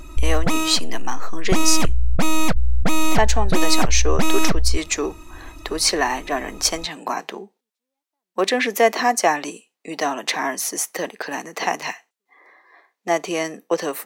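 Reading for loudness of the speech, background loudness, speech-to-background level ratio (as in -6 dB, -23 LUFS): -22.5 LUFS, -23.0 LUFS, 0.5 dB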